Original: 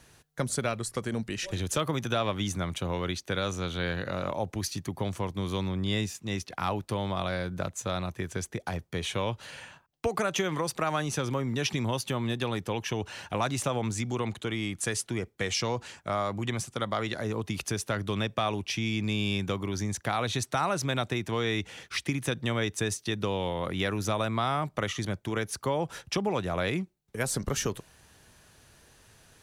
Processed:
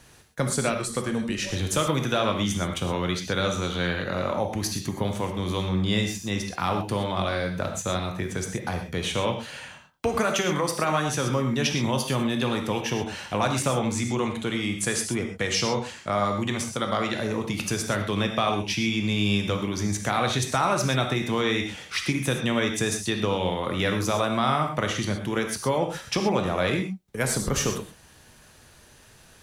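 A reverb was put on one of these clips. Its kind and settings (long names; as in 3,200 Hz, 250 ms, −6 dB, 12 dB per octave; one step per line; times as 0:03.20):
reverb whose tail is shaped and stops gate 150 ms flat, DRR 3.5 dB
level +3.5 dB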